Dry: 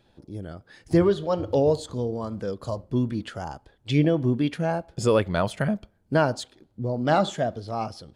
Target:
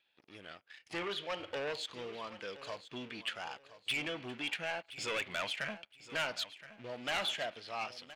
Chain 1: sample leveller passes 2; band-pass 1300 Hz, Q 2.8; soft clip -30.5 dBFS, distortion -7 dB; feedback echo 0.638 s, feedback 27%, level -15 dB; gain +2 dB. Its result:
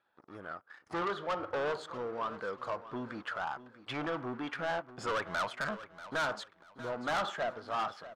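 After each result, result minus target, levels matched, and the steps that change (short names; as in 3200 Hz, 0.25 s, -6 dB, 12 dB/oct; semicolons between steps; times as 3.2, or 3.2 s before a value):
echo 0.382 s early; 1000 Hz band +6.0 dB
change: feedback echo 1.02 s, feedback 27%, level -15 dB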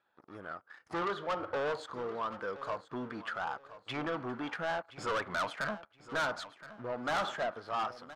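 1000 Hz band +6.0 dB
change: band-pass 2600 Hz, Q 2.8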